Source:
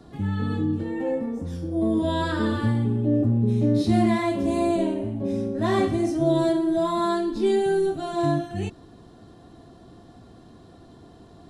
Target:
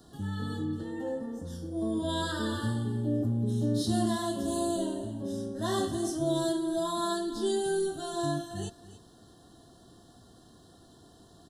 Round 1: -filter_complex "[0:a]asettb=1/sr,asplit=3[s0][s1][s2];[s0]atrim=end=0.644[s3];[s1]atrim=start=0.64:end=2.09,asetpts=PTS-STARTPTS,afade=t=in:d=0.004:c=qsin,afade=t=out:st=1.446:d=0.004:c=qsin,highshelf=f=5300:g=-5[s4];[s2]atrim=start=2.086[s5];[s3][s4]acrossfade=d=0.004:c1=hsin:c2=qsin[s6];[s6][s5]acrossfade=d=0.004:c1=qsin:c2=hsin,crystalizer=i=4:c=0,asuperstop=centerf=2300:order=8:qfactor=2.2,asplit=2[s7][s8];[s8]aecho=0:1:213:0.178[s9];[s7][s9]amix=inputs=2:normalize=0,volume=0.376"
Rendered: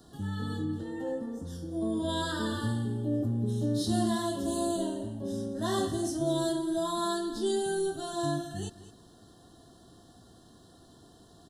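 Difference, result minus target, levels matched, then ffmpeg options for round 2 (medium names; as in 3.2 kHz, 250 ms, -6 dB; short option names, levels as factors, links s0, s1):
echo 71 ms early
-filter_complex "[0:a]asettb=1/sr,asplit=3[s0][s1][s2];[s0]atrim=end=0.644[s3];[s1]atrim=start=0.64:end=2.09,asetpts=PTS-STARTPTS,afade=t=in:d=0.004:c=qsin,afade=t=out:st=1.446:d=0.004:c=qsin,highshelf=f=5300:g=-5[s4];[s2]atrim=start=2.086[s5];[s3][s4]acrossfade=d=0.004:c1=hsin:c2=qsin[s6];[s6][s5]acrossfade=d=0.004:c1=qsin:c2=hsin,crystalizer=i=4:c=0,asuperstop=centerf=2300:order=8:qfactor=2.2,asplit=2[s7][s8];[s8]aecho=0:1:284:0.178[s9];[s7][s9]amix=inputs=2:normalize=0,volume=0.376"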